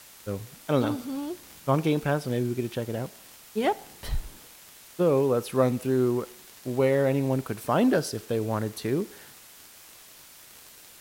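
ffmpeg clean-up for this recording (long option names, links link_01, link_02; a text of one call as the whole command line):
ffmpeg -i in.wav -af "adeclick=threshold=4,afwtdn=0.0035" out.wav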